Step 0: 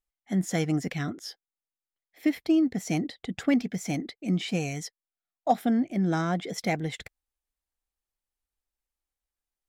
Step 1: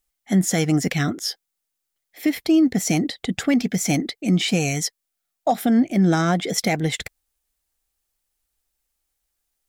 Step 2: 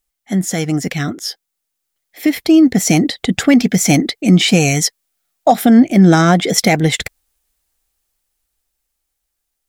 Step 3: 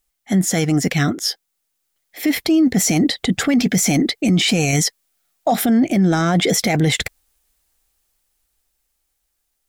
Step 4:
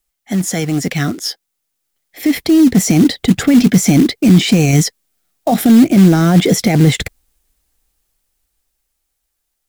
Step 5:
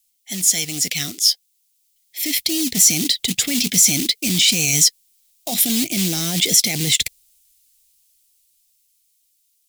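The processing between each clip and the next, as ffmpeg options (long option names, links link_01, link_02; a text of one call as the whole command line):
ffmpeg -i in.wav -af "highshelf=frequency=4500:gain=7.5,bandreject=frequency=1000:width=20,alimiter=limit=-19dB:level=0:latency=1:release=116,volume=9dB" out.wav
ffmpeg -i in.wav -af "dynaudnorm=framelen=490:gausssize=9:maxgain=9.5dB,volume=1.5dB" out.wav
ffmpeg -i in.wav -af "alimiter=limit=-11.5dB:level=0:latency=1:release=11,volume=2.5dB" out.wav
ffmpeg -i in.wav -filter_complex "[0:a]acrossover=split=410|600|5700[link_01][link_02][link_03][link_04];[link_01]dynaudnorm=framelen=330:gausssize=13:maxgain=13dB[link_05];[link_05][link_02][link_03][link_04]amix=inputs=4:normalize=0,acrusher=bits=5:mode=log:mix=0:aa=0.000001" out.wav
ffmpeg -i in.wav -af "aexciter=amount=9.7:drive=5.8:freq=2200,volume=-15.5dB" out.wav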